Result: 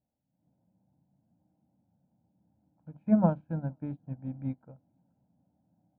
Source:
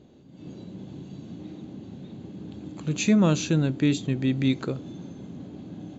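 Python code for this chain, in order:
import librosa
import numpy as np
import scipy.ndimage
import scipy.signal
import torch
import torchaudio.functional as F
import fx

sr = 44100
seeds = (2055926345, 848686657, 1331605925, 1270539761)

y = fx.ladder_lowpass(x, sr, hz=1200.0, resonance_pct=35)
y = fx.hum_notches(y, sr, base_hz=50, count=5)
y = y + 0.84 * np.pad(y, (int(1.3 * sr / 1000.0), 0))[:len(y)]
y = y + 10.0 ** (-23.5 / 20.0) * np.pad(y, (int(477 * sr / 1000.0), 0))[:len(y)]
y = fx.upward_expand(y, sr, threshold_db=-42.0, expansion=2.5)
y = F.gain(torch.from_numpy(y), 4.5).numpy()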